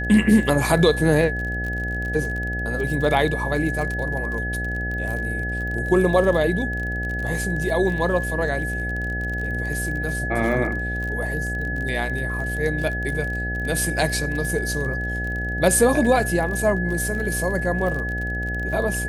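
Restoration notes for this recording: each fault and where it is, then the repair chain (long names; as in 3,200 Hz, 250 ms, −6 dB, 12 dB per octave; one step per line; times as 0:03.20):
mains buzz 60 Hz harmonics 13 −28 dBFS
surface crackle 33 per second −28 dBFS
whistle 1,700 Hz −27 dBFS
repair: click removal
hum removal 60 Hz, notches 13
notch filter 1,700 Hz, Q 30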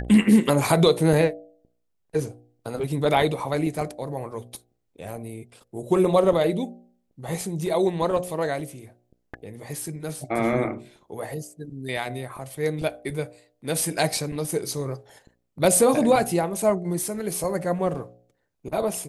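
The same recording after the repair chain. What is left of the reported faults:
none of them is left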